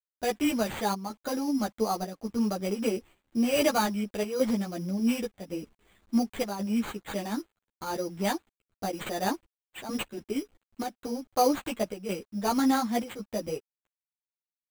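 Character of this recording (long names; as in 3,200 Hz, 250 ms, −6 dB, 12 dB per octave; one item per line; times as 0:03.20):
a quantiser's noise floor 10 bits, dither none
chopped level 0.91 Hz, depth 60%, duty 85%
aliases and images of a low sample rate 5,400 Hz, jitter 0%
a shimmering, thickened sound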